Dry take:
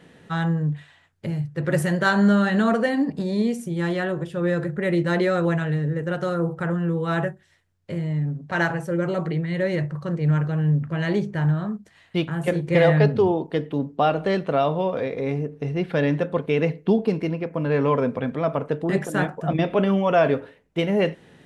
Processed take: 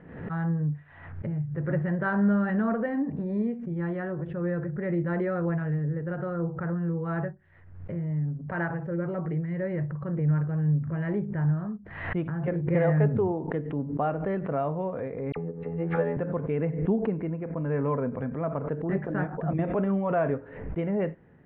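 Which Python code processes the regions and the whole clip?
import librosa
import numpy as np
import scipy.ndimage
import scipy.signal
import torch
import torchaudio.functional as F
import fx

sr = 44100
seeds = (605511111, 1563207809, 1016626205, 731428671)

y = fx.chain(x, sr, fx.robotise(hz=83.5),
    fx.small_body(hz=(480.0, 820.0, 1200.0), ring_ms=85, db=16),
    fx.dispersion(late='lows', ms=45.0, hz=2400.0), at=(15.32, 16.17))
y = scipy.signal.sosfilt(scipy.signal.butter(4, 1900.0, 'lowpass', fs=sr, output='sos'), y)
y = fx.low_shelf(y, sr, hz=140.0, db=9.5)
y = fx.pre_swell(y, sr, db_per_s=65.0)
y = y * librosa.db_to_amplitude(-8.5)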